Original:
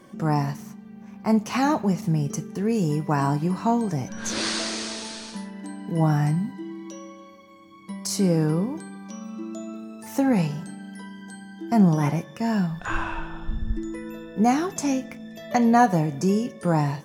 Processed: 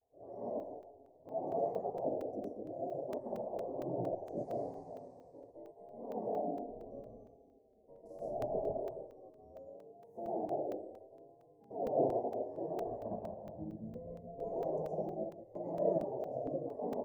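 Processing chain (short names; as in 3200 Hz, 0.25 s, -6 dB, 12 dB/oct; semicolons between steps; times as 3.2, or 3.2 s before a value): 6.58–8.61 octaver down 1 oct, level +3 dB; resonator 110 Hz, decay 1.2 s, harmonics all, mix 60%; reverb RT60 0.95 s, pre-delay 80 ms, DRR -5 dB; dynamic EQ 470 Hz, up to +7 dB, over -35 dBFS, Q 0.72; spectral gate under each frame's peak -15 dB weak; notches 50/100/150/200/250/300/350 Hz; vibrato 0.72 Hz 83 cents; elliptic low-pass 680 Hz, stop band 50 dB; tilt +2.5 dB/oct; crackling interface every 0.23 s, samples 128, zero, from 0.6; gain +1 dB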